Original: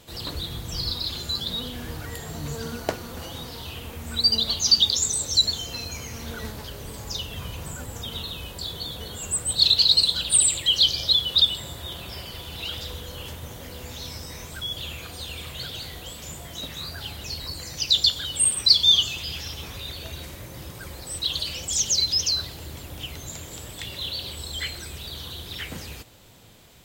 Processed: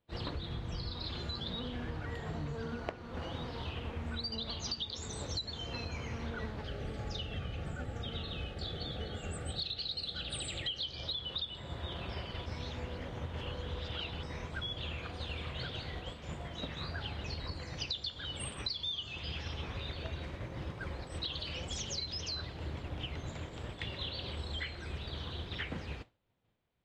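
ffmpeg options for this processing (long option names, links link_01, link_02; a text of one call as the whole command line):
ffmpeg -i in.wav -filter_complex "[0:a]asettb=1/sr,asplit=3[link_01][link_02][link_03];[link_01]atrim=end=6.614[link_04];[link_02]atrim=start=6.61:end=10.81,asetpts=PTS-STARTPTS,afade=type=in:duration=0.004:curve=qsin,afade=type=out:start_time=4.196:duration=0.004:curve=qsin,asuperstop=centerf=1000:order=8:qfactor=4.6[link_05];[link_03]atrim=start=10.806[link_06];[link_04][link_05]acrossfade=duration=0.004:curve1=hsin:curve2=qsin[link_07];[link_07][link_06]acrossfade=duration=0.004:curve1=qsin:curve2=hsin,asplit=3[link_08][link_09][link_10];[link_08]atrim=end=12.462[link_11];[link_09]atrim=start=12.458:end=14.232,asetpts=PTS-STARTPTS,areverse[link_12];[link_10]atrim=start=14.228[link_13];[link_11][link_12]acrossfade=duration=0.004:curve1=hsin:curve2=hsin[link_14];[link_14][link_13]acrossfade=duration=0.004:curve1=hsin:curve2=hsin,lowpass=2500,agate=range=-33dB:threshold=-34dB:ratio=3:detection=peak,acompressor=threshold=-40dB:ratio=12,volume=4.5dB" out.wav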